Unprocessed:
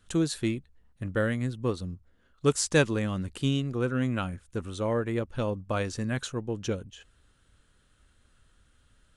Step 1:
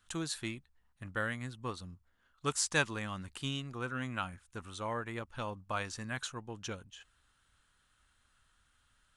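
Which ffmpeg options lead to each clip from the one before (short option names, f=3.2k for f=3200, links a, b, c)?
-af "lowshelf=f=660:t=q:w=1.5:g=-8,volume=-3.5dB"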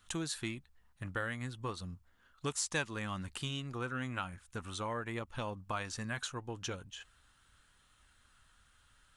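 -af "acompressor=threshold=-43dB:ratio=2,flanger=delay=0.3:depth=2.1:regen=-82:speed=0.38:shape=sinusoidal,volume=9dB"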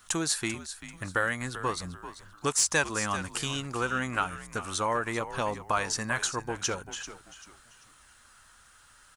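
-filter_complex "[0:a]asplit=4[a][b][c][d];[b]adelay=390,afreqshift=-78,volume=-12.5dB[e];[c]adelay=780,afreqshift=-156,volume=-22.4dB[f];[d]adelay=1170,afreqshift=-234,volume=-32.3dB[g];[a][e][f][g]amix=inputs=4:normalize=0,aexciter=amount=3.3:drive=7.5:freq=4.8k,asplit=2[h][i];[i]highpass=f=720:p=1,volume=11dB,asoftclip=type=tanh:threshold=-8dB[j];[h][j]amix=inputs=2:normalize=0,lowpass=f=1.6k:p=1,volume=-6dB,volume=7dB"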